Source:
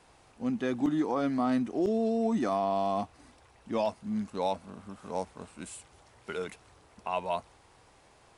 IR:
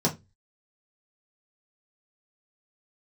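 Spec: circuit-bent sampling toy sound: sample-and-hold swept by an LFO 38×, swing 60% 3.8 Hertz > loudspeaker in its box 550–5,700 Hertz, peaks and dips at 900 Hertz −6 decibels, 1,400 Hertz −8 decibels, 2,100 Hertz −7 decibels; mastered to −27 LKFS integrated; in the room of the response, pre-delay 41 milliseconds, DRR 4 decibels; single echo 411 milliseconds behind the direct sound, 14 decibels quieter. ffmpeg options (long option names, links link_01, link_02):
-filter_complex "[0:a]aecho=1:1:411:0.2,asplit=2[link_01][link_02];[1:a]atrim=start_sample=2205,adelay=41[link_03];[link_02][link_03]afir=irnorm=-1:irlink=0,volume=-15dB[link_04];[link_01][link_04]amix=inputs=2:normalize=0,acrusher=samples=38:mix=1:aa=0.000001:lfo=1:lforange=22.8:lforate=3.8,highpass=550,equalizer=frequency=900:width_type=q:width=4:gain=-6,equalizer=frequency=1400:width_type=q:width=4:gain=-8,equalizer=frequency=2100:width_type=q:width=4:gain=-7,lowpass=frequency=5700:width=0.5412,lowpass=frequency=5700:width=1.3066,volume=6dB"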